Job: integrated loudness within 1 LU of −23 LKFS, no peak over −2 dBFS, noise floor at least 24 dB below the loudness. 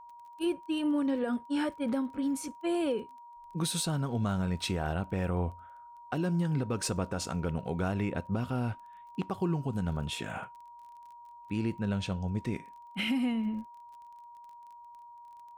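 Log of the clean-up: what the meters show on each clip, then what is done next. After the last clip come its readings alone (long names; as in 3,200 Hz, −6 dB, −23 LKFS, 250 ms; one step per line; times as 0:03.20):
crackle rate 24 per second; interfering tone 950 Hz; level of the tone −48 dBFS; integrated loudness −33.0 LKFS; sample peak −21.0 dBFS; target loudness −23.0 LKFS
→ click removal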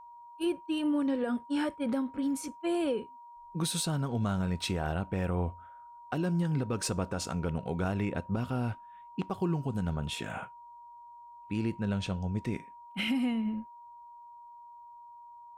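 crackle rate 0 per second; interfering tone 950 Hz; level of the tone −48 dBFS
→ notch filter 950 Hz, Q 30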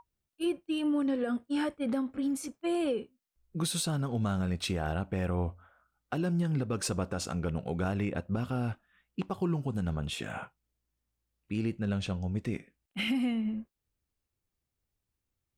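interfering tone none found; integrated loudness −33.0 LKFS; sample peak −21.0 dBFS; target loudness −23.0 LKFS
→ level +10 dB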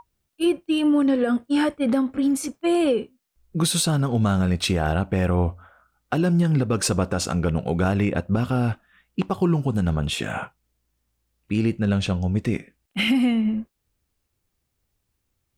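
integrated loudness −23.0 LKFS; sample peak −11.0 dBFS; background noise floor −76 dBFS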